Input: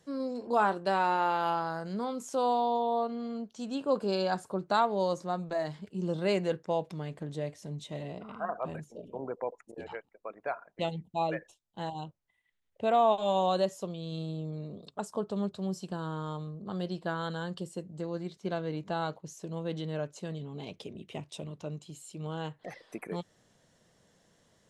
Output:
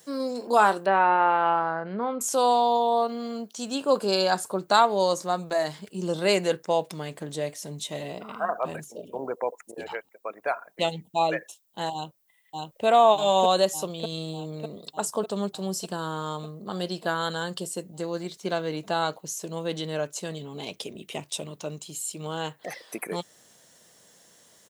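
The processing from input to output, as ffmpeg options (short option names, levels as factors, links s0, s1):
-filter_complex "[0:a]asettb=1/sr,asplit=3[s0][s1][s2];[s0]atrim=end=0.864[s3];[s1]atrim=start=0.86:end=2.21,asetpts=PTS-STARTPTS,afade=t=in:d=0.004:c=qsin,afade=t=out:st=1.346:d=0.004:c=qsin,lowpass=f=2400:w=0.5412,lowpass=f=2400:w=1.3066[s4];[s2]atrim=start=2.206[s5];[s3][s4]acrossfade=d=0.004:c1=hsin:c2=qsin[s6];[s6][s5]acrossfade=d=0.004:c1=qsin:c2=hsin,asplit=2[s7][s8];[s8]afade=t=in:st=11.93:d=0.01,afade=t=out:st=12.85:d=0.01,aecho=0:1:600|1200|1800|2400|3000|3600|4200|4800|5400|6000|6600|7200:0.891251|0.623876|0.436713|0.305699|0.213989|0.149793|0.104855|0.0733983|0.0513788|0.0359652|0.0251756|0.0176229[s9];[s7][s9]amix=inputs=2:normalize=0,aemphasis=mode=production:type=bsi,volume=2.37"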